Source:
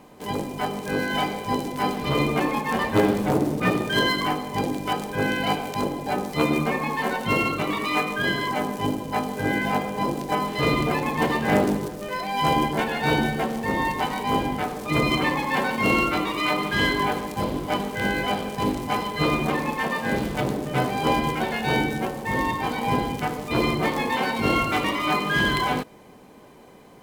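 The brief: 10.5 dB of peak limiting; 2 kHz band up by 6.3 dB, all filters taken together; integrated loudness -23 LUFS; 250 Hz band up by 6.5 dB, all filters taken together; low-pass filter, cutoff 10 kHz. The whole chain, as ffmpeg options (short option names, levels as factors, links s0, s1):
-af "lowpass=10000,equalizer=f=250:t=o:g=8,equalizer=f=2000:t=o:g=7.5,alimiter=limit=0.2:level=0:latency=1"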